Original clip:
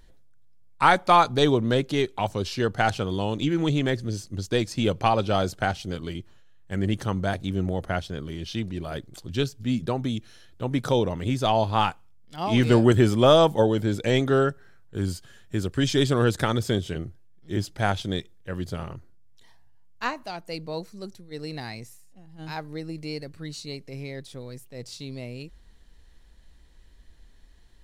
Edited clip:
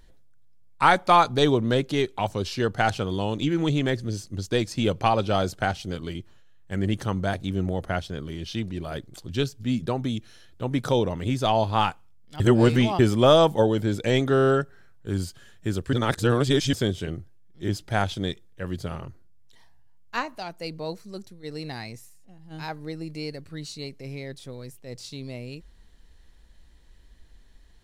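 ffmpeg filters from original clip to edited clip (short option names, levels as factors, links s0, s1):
-filter_complex "[0:a]asplit=9[s0][s1][s2][s3][s4][s5][s6][s7][s8];[s0]atrim=end=12.402[s9];[s1]atrim=start=12.398:end=12.992,asetpts=PTS-STARTPTS,areverse[s10];[s2]atrim=start=12.988:end=14.372[s11];[s3]atrim=start=14.338:end=14.372[s12];[s4]atrim=start=14.338:end=14.372[s13];[s5]atrim=start=14.338:end=14.372[s14];[s6]atrim=start=14.338:end=15.812[s15];[s7]atrim=start=15.808:end=16.612,asetpts=PTS-STARTPTS,areverse[s16];[s8]atrim=start=16.608[s17];[s9][s10]acrossfade=d=0.004:c1=hsin:c2=hsin[s18];[s18][s11]acrossfade=d=0.004:c1=hsin:c2=hsin[s19];[s19][s12]acrossfade=d=0.004:c1=hsin:c2=hsin[s20];[s20][s13]acrossfade=d=0.004:c1=hsin:c2=hsin[s21];[s21][s14]acrossfade=d=0.004:c1=hsin:c2=hsin[s22];[s22][s15]acrossfade=d=0.004:c1=hsin:c2=hsin[s23];[s23][s16]acrossfade=d=0.004:c1=hsin:c2=hsin[s24];[s24][s17]acrossfade=d=0.004:c1=hsin:c2=hsin"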